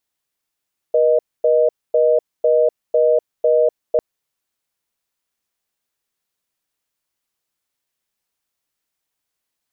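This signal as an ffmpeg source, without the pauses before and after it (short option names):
-f lavfi -i "aevalsrc='0.2*(sin(2*PI*480*t)+sin(2*PI*620*t))*clip(min(mod(t,0.5),0.25-mod(t,0.5))/0.005,0,1)':d=3.05:s=44100"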